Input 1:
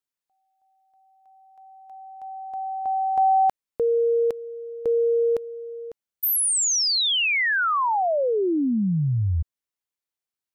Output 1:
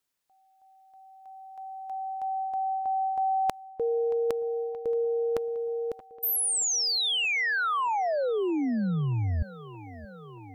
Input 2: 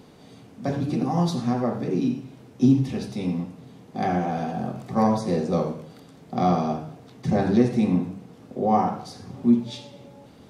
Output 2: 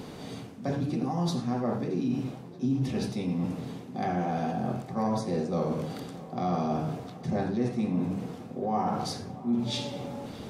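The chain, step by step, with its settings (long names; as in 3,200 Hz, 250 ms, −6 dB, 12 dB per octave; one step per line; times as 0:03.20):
reversed playback
downward compressor 4 to 1, threshold −37 dBFS
reversed playback
feedback echo with a low-pass in the loop 626 ms, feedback 80%, low-pass 3,400 Hz, level −19 dB
level +8 dB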